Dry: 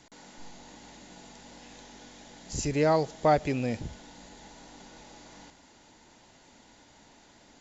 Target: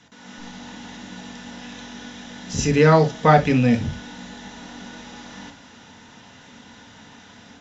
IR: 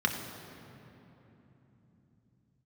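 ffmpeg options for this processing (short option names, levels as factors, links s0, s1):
-filter_complex "[0:a]dynaudnorm=f=180:g=3:m=2.24[s0];[1:a]atrim=start_sample=2205,atrim=end_sample=3087[s1];[s0][s1]afir=irnorm=-1:irlink=0,volume=0.631"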